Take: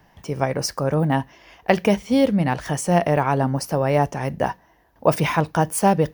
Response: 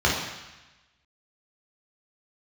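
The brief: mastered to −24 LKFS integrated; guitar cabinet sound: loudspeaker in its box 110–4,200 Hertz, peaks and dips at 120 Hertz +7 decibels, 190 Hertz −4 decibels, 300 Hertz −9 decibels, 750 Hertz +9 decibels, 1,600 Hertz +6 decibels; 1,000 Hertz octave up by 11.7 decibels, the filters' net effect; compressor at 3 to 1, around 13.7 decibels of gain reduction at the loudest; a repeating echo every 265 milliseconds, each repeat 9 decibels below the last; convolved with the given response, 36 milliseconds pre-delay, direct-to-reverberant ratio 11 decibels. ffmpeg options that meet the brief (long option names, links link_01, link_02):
-filter_complex "[0:a]equalizer=frequency=1000:width_type=o:gain=8,acompressor=threshold=-27dB:ratio=3,aecho=1:1:265|530|795|1060:0.355|0.124|0.0435|0.0152,asplit=2[link_01][link_02];[1:a]atrim=start_sample=2205,adelay=36[link_03];[link_02][link_03]afir=irnorm=-1:irlink=0,volume=-28.5dB[link_04];[link_01][link_04]amix=inputs=2:normalize=0,highpass=110,equalizer=frequency=120:width_type=q:width=4:gain=7,equalizer=frequency=190:width_type=q:width=4:gain=-4,equalizer=frequency=300:width_type=q:width=4:gain=-9,equalizer=frequency=750:width_type=q:width=4:gain=9,equalizer=frequency=1600:width_type=q:width=4:gain=6,lowpass=frequency=4200:width=0.5412,lowpass=frequency=4200:width=1.3066,volume=1.5dB"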